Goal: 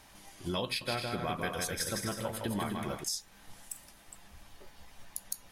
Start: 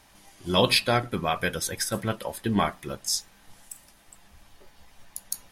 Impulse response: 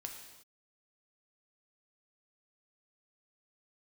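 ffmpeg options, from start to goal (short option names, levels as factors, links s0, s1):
-filter_complex "[0:a]acompressor=threshold=0.02:ratio=4,asettb=1/sr,asplit=3[s0][s1][s2];[s0]atrim=end=0.654[s3];[s1]atrim=start=0.65:end=3.04,asetpts=PTS-STARTPTS,afade=t=in:d=0.004:c=qsin,afade=t=out:st=2.386:d=0.004:c=qsin,aecho=1:1:160|256|313.6|348.2|368.9:0.631|0.398|0.251|0.158|0.1,atrim=end_sample=105399[s4];[s2]atrim=start=3.036[s5];[s3][s4]acrossfade=d=0.004:c1=hsin:c2=qsin[s6];[s6][s5]acrossfade=d=0.004:c1=qsin:c2=hsin"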